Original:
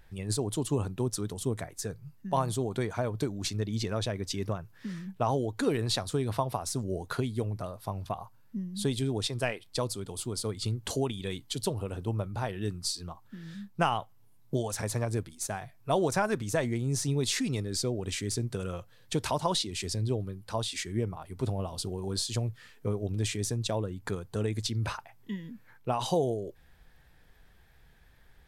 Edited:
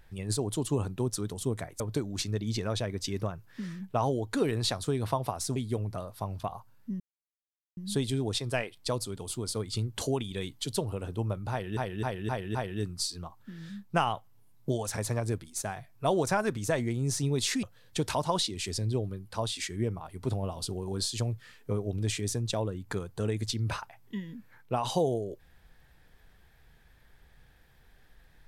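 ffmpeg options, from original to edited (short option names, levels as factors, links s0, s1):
-filter_complex "[0:a]asplit=9[s0][s1][s2][s3][s4][s5][s6][s7][s8];[s0]atrim=end=1.802[s9];[s1]atrim=start=3.058:end=6.822[s10];[s2]atrim=start=7.218:end=8.66,asetpts=PTS-STARTPTS,afade=t=out:st=1.438:d=0.004:c=hsin,apad=pad_dur=0.77[s11];[s3]atrim=start=8.66:end=12.662,asetpts=PTS-STARTPTS,afade=t=in:d=0.004:c=hsin[s12];[s4]atrim=start=12.398:end=12.662[s13];[s5]atrim=start=12.398:end=12.662[s14];[s6]atrim=start=12.398:end=12.662[s15];[s7]atrim=start=12.398:end=17.482[s16];[s8]atrim=start=18.788[s17];[s9][s10]acrossfade=d=0.004:c1=hsin:c2=hsin[s18];[s11][s12]concat=n=2:v=0:a=1[s19];[s18][s19]acrossfade=d=0.004:c1=hsin:c2=hsin[s20];[s20][s13]acrossfade=d=0.004:c1=hsin:c2=hsin[s21];[s21][s14]acrossfade=d=0.004:c1=hsin:c2=hsin[s22];[s22][s15]acrossfade=d=0.004:c1=hsin:c2=hsin[s23];[s23][s16]acrossfade=d=0.004:c1=hsin:c2=hsin[s24];[s24][s17]acrossfade=d=0.004:c1=hsin:c2=hsin"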